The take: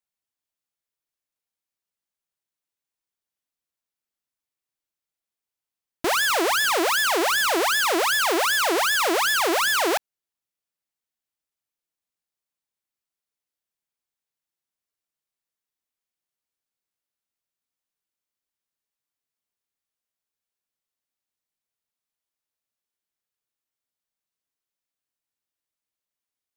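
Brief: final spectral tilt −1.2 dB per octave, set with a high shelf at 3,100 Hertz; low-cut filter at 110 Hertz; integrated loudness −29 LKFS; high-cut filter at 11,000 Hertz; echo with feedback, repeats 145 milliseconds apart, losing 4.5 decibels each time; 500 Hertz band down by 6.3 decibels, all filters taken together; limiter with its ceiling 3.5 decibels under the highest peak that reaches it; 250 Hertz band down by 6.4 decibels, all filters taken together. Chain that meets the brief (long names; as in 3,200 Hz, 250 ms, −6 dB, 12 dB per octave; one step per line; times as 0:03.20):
high-pass filter 110 Hz
low-pass filter 11,000 Hz
parametric band 250 Hz −6 dB
parametric band 500 Hz −6.5 dB
high-shelf EQ 3,100 Hz −5 dB
brickwall limiter −19 dBFS
repeating echo 145 ms, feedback 60%, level −4.5 dB
level −6 dB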